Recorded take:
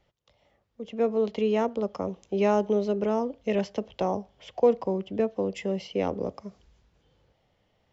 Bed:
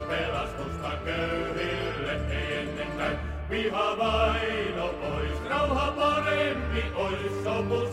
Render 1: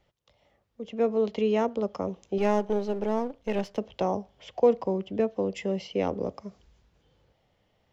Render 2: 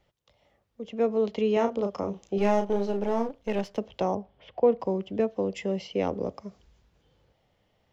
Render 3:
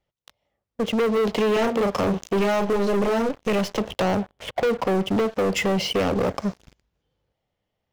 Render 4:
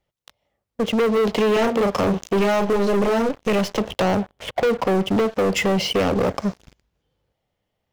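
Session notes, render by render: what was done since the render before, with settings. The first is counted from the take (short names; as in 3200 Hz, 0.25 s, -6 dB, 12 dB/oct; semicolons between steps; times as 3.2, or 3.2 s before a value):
2.38–3.78 half-wave gain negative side -7 dB
1.53–3.29 doubler 35 ms -6 dB; 4.15–4.8 air absorption 280 m
compressor 3:1, threshold -29 dBFS, peak gain reduction 10 dB; sample leveller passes 5
gain +2.5 dB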